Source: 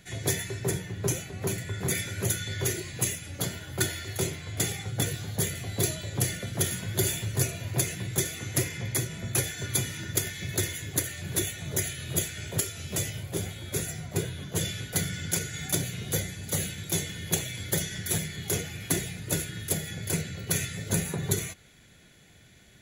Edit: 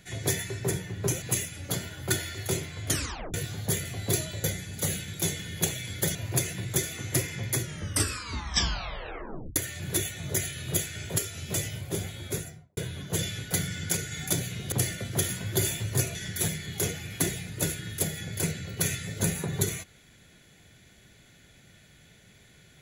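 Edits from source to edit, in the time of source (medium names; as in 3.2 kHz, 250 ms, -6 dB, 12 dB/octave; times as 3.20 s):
1.22–2.92 s: delete
4.58 s: tape stop 0.46 s
6.14–7.57 s: swap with 16.14–17.85 s
9.03 s: tape stop 1.95 s
13.66–14.19 s: studio fade out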